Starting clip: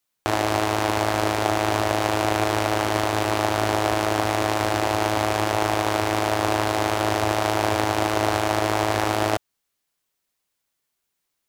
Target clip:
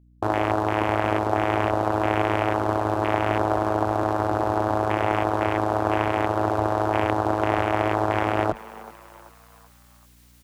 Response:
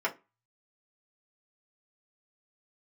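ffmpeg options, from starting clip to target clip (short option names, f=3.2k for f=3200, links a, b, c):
-filter_complex "[0:a]afwtdn=0.0501,areverse,acompressor=mode=upward:threshold=-30dB:ratio=2.5,areverse,aeval=exprs='val(0)+0.002*(sin(2*PI*60*n/s)+sin(2*PI*2*60*n/s)/2+sin(2*PI*3*60*n/s)/3+sin(2*PI*4*60*n/s)/4+sin(2*PI*5*60*n/s)/5)':c=same,atempo=1.1,asplit=5[a][b][c][d][e];[b]adelay=383,afreqshift=120,volume=-19dB[f];[c]adelay=766,afreqshift=240,volume=-25.7dB[g];[d]adelay=1149,afreqshift=360,volume=-32.5dB[h];[e]adelay=1532,afreqshift=480,volume=-39.2dB[i];[a][f][g][h][i]amix=inputs=5:normalize=0"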